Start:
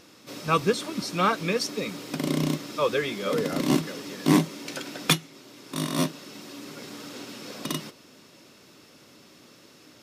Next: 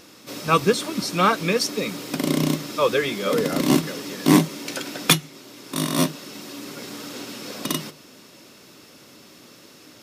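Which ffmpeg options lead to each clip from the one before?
-af "highshelf=f=10000:g=6,bandreject=f=50:t=h:w=6,bandreject=f=100:t=h:w=6,bandreject=f=150:t=h:w=6,volume=1.68"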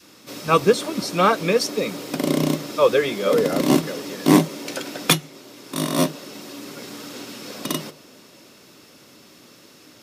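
-af "adynamicequalizer=threshold=0.0178:dfrequency=560:dqfactor=1:tfrequency=560:tqfactor=1:attack=5:release=100:ratio=0.375:range=3:mode=boostabove:tftype=bell,volume=0.891"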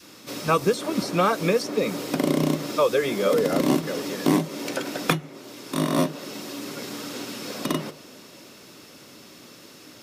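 -filter_complex "[0:a]acrossover=split=2300|4900[s0][s1][s2];[s0]acompressor=threshold=0.1:ratio=4[s3];[s1]acompressor=threshold=0.00708:ratio=4[s4];[s2]acompressor=threshold=0.01:ratio=4[s5];[s3][s4][s5]amix=inputs=3:normalize=0,volume=1.26"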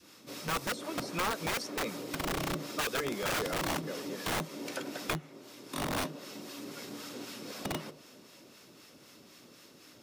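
-filter_complex "[0:a]acrossover=split=770[s0][s1];[s0]aeval=exprs='val(0)*(1-0.5/2+0.5/2*cos(2*PI*3.9*n/s))':c=same[s2];[s1]aeval=exprs='val(0)*(1-0.5/2-0.5/2*cos(2*PI*3.9*n/s))':c=same[s3];[s2][s3]amix=inputs=2:normalize=0,acrossover=split=990[s4][s5];[s4]aeval=exprs='(mod(10.6*val(0)+1,2)-1)/10.6':c=same[s6];[s6][s5]amix=inputs=2:normalize=0,volume=0.447"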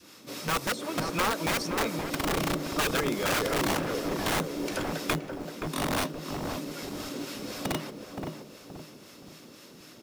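-filter_complex "[0:a]asplit=2[s0][s1];[s1]adelay=523,lowpass=f=860:p=1,volume=0.708,asplit=2[s2][s3];[s3]adelay=523,lowpass=f=860:p=1,volume=0.44,asplit=2[s4][s5];[s5]adelay=523,lowpass=f=860:p=1,volume=0.44,asplit=2[s6][s7];[s7]adelay=523,lowpass=f=860:p=1,volume=0.44,asplit=2[s8][s9];[s9]adelay=523,lowpass=f=860:p=1,volume=0.44,asplit=2[s10][s11];[s11]adelay=523,lowpass=f=860:p=1,volume=0.44[s12];[s0][s2][s4][s6][s8][s10][s12]amix=inputs=7:normalize=0,acrusher=bits=6:mode=log:mix=0:aa=0.000001,volume=1.68"

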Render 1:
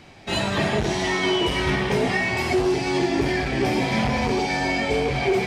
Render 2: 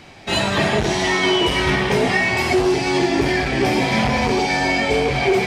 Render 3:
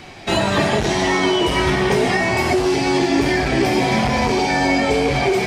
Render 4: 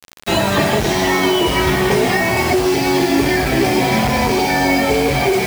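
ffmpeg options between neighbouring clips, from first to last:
-af "lowshelf=f=430:g=-3,volume=1.88"
-filter_complex "[0:a]acrossover=split=1600|4400[s0][s1][s2];[s0]acompressor=threshold=0.112:ratio=4[s3];[s1]acompressor=threshold=0.0224:ratio=4[s4];[s2]acompressor=threshold=0.0158:ratio=4[s5];[s3][s4][s5]amix=inputs=3:normalize=0,flanger=delay=2.6:depth=1.2:regen=81:speed=0.51:shape=triangular,volume=2.82"
-af "acrusher=bits=4:mix=0:aa=0.000001,volume=1.26"

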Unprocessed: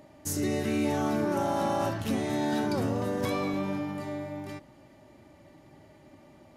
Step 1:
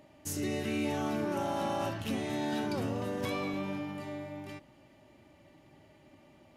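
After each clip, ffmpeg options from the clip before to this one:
-af "equalizer=f=2800:t=o:w=0.65:g=6.5,volume=0.562"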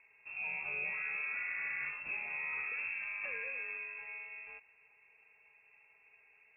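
-af "lowpass=f=2400:t=q:w=0.5098,lowpass=f=2400:t=q:w=0.6013,lowpass=f=2400:t=q:w=0.9,lowpass=f=2400:t=q:w=2.563,afreqshift=-2800,volume=0.501"

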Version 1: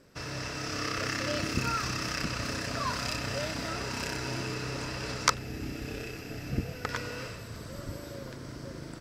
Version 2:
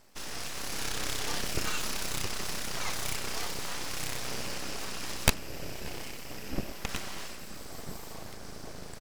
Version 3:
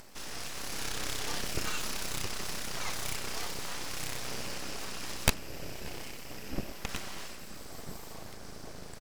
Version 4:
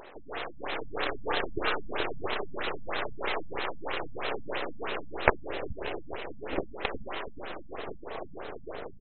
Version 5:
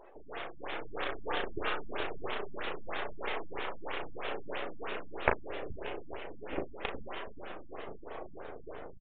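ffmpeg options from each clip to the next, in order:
-filter_complex "[0:a]highshelf=f=6400:g=9.5,aeval=exprs='abs(val(0))':c=same,asplit=2[s0][s1];[s1]adelay=583.1,volume=0.112,highshelf=f=4000:g=-13.1[s2];[s0][s2]amix=inputs=2:normalize=0"
-af "acompressor=mode=upward:threshold=0.01:ratio=2.5,volume=0.794"
-af "lowshelf=f=280:t=q:w=1.5:g=-12,aecho=1:1:427|854|1281:0.501|0.115|0.0265,afftfilt=real='re*lt(b*sr/1024,220*pow(4200/220,0.5+0.5*sin(2*PI*3.1*pts/sr)))':imag='im*lt(b*sr/1024,220*pow(4200/220,0.5+0.5*sin(2*PI*3.1*pts/sr)))':win_size=1024:overlap=0.75,volume=2.82"
-filter_complex "[0:a]asplit=2[s0][s1];[s1]adelay=36,volume=0.447[s2];[s0][s2]amix=inputs=2:normalize=0,afftdn=nr=17:nf=-47,aresample=8000,aresample=44100,volume=0.531"

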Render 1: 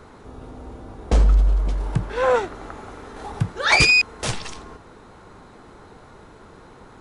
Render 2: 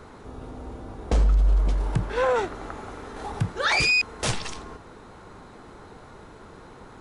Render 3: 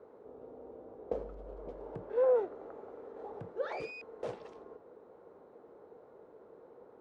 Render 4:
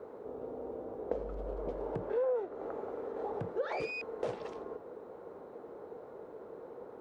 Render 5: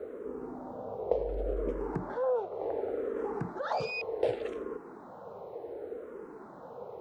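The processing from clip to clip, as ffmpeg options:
-af "alimiter=limit=0.2:level=0:latency=1:release=14"
-af "bandpass=f=490:t=q:w=3.1:csg=0,volume=0.75"
-af "acompressor=threshold=0.01:ratio=4,volume=2.51"
-filter_complex "[0:a]asplit=2[s0][s1];[s1]afreqshift=-0.68[s2];[s0][s2]amix=inputs=2:normalize=1,volume=2.37"

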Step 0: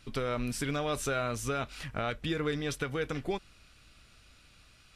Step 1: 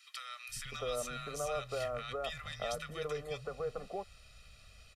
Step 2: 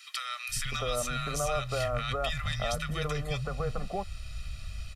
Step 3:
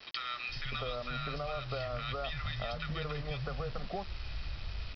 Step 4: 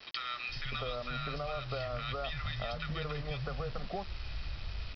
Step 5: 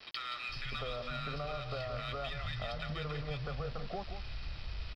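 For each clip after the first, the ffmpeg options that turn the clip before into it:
-filter_complex "[0:a]aecho=1:1:1.6:0.86,acrossover=split=360|1400|3300[s0][s1][s2][s3];[s0]acompressor=threshold=0.00501:ratio=4[s4];[s1]acompressor=threshold=0.0251:ratio=4[s5];[s2]acompressor=threshold=0.00447:ratio=4[s6];[s3]acompressor=threshold=0.00891:ratio=4[s7];[s4][s5][s6][s7]amix=inputs=4:normalize=0,acrossover=split=170|1300[s8][s9][s10];[s8]adelay=490[s11];[s9]adelay=650[s12];[s11][s12][s10]amix=inputs=3:normalize=0,volume=0.794"
-filter_complex "[0:a]equalizer=f=450:w=2.8:g=-6,asplit=2[s0][s1];[s1]alimiter=level_in=2.66:limit=0.0631:level=0:latency=1:release=340,volume=0.376,volume=1.41[s2];[s0][s2]amix=inputs=2:normalize=0,asubboost=boost=3.5:cutoff=190,volume=1.33"
-af "acompressor=threshold=0.0224:ratio=10,aresample=11025,acrusher=bits=7:mix=0:aa=0.000001,aresample=44100"
-af anull
-filter_complex "[0:a]asplit=2[s0][s1];[s1]asoftclip=type=tanh:threshold=0.0106,volume=0.316[s2];[s0][s2]amix=inputs=2:normalize=0,aecho=1:1:174:0.355,volume=0.668"

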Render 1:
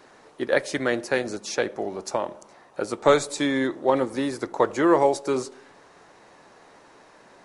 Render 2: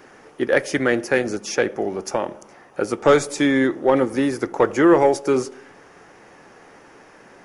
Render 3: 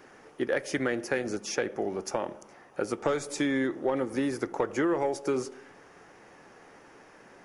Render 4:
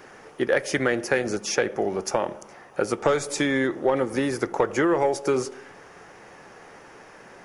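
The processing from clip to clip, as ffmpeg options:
-af "acontrast=69,equalizer=f=630:t=o:w=0.33:g=-5,equalizer=f=1000:t=o:w=0.33:g=-6,equalizer=f=4000:t=o:w=0.33:g=-12,equalizer=f=8000:t=o:w=0.33:g=-8"
-af "acompressor=threshold=0.126:ratio=6,volume=0.501"
-af "equalizer=f=280:w=2.4:g=-4.5,volume=2.24"

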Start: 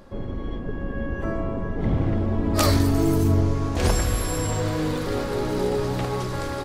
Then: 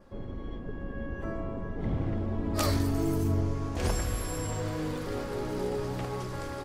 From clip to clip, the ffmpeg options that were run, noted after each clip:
-af "adynamicequalizer=threshold=0.00178:dfrequency=3900:dqfactor=4.9:tfrequency=3900:tqfactor=4.9:attack=5:release=100:ratio=0.375:range=2:mode=cutabove:tftype=bell,volume=0.398"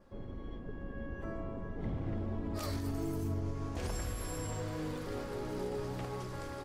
-af "alimiter=limit=0.0794:level=0:latency=1:release=88,volume=0.531"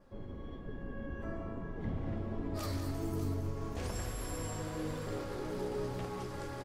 -filter_complex "[0:a]flanger=delay=6.4:depth=7.6:regen=-57:speed=1.2:shape=triangular,asplit=2[s0][s1];[s1]aecho=0:1:189|589:0.355|0.224[s2];[s0][s2]amix=inputs=2:normalize=0,volume=1.5"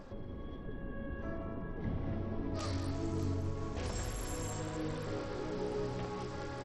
-af "acompressor=mode=upward:threshold=0.01:ratio=2.5" -ar 32000 -c:a sbc -b:a 64k

